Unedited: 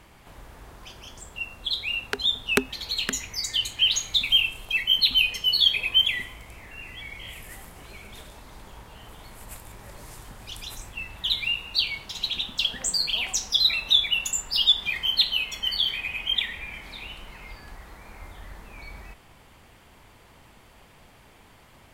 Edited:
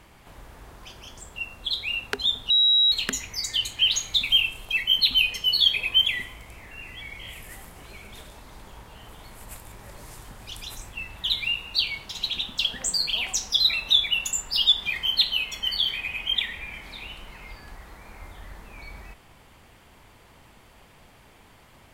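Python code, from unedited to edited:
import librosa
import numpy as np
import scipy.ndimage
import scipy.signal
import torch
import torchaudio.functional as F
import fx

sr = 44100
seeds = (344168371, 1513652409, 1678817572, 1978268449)

y = fx.edit(x, sr, fx.bleep(start_s=2.5, length_s=0.42, hz=3860.0, db=-15.5), tone=tone)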